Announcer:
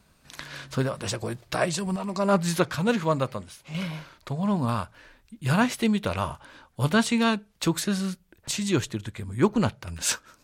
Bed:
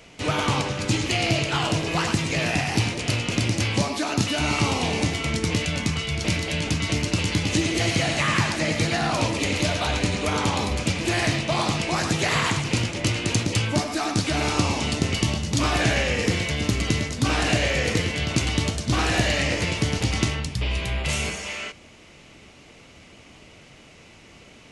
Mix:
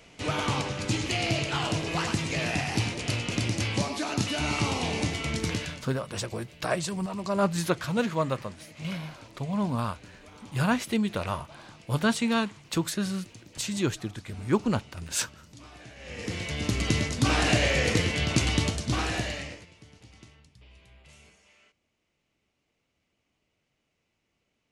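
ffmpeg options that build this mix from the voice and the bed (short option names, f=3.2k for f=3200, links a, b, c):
-filter_complex "[0:a]adelay=5100,volume=-3dB[a];[1:a]volume=20dB,afade=t=out:st=5.47:d=0.39:silence=0.0841395,afade=t=in:st=15.98:d=1.05:silence=0.0562341,afade=t=out:st=18.53:d=1.13:silence=0.0421697[b];[a][b]amix=inputs=2:normalize=0"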